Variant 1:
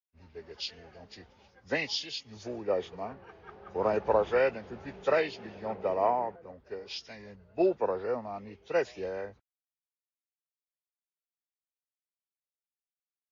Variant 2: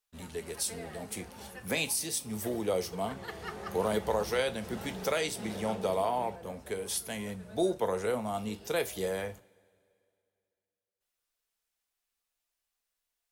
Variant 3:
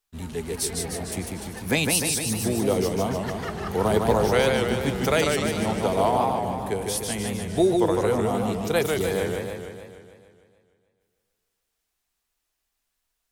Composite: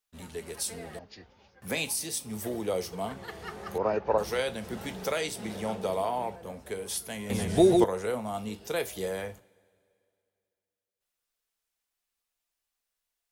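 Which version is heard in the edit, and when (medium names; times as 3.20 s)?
2
0.99–1.62 s: from 1
3.78–4.18 s: from 1
7.30–7.84 s: from 3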